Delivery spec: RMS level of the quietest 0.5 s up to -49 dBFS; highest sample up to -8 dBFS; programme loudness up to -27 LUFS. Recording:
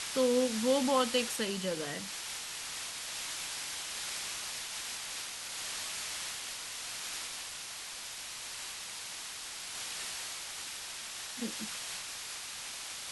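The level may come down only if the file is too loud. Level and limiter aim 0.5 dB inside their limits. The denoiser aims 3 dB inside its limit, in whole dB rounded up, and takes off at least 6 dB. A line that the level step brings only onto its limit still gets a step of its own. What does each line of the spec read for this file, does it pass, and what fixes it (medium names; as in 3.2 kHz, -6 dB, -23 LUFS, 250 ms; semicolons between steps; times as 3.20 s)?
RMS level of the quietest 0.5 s -43 dBFS: fail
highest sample -16.5 dBFS: pass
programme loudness -35.5 LUFS: pass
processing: noise reduction 9 dB, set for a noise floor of -43 dBFS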